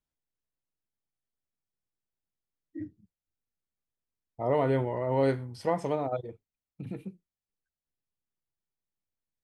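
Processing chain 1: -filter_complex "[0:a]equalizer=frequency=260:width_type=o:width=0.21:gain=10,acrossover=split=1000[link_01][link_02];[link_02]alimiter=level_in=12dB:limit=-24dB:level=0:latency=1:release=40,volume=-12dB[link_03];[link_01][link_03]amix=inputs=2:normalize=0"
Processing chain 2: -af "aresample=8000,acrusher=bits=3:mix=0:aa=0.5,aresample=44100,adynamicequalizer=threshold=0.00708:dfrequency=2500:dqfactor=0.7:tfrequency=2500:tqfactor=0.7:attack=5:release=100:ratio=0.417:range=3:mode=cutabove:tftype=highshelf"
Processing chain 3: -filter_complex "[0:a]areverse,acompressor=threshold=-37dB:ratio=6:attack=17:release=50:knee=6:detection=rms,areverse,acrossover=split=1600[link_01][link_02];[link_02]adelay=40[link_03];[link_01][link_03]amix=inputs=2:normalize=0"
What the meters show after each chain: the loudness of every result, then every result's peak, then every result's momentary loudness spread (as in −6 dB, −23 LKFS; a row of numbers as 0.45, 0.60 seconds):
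−28.0, −29.5, −41.0 LKFS; −12.5, −15.5, −27.0 dBFS; 19, 10, 11 LU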